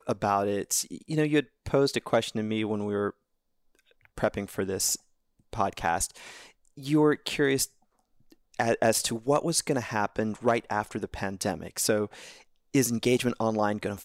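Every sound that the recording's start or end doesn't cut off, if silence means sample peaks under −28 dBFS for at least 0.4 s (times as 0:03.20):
0:04.18–0:04.95
0:05.53–0:06.06
0:06.86–0:07.65
0:08.59–0:12.05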